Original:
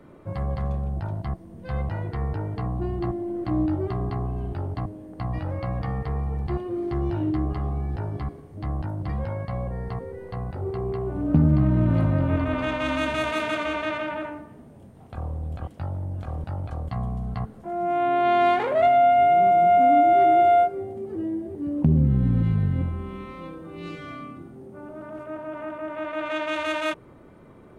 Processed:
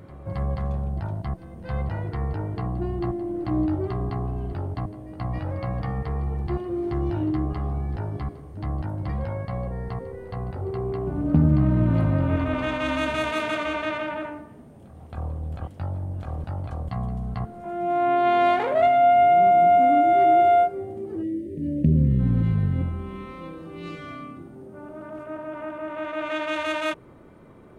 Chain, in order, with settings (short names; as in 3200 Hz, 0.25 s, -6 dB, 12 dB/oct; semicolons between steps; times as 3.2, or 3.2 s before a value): spectral delete 21.23–22.19, 630–1700 Hz; pre-echo 0.271 s -16.5 dB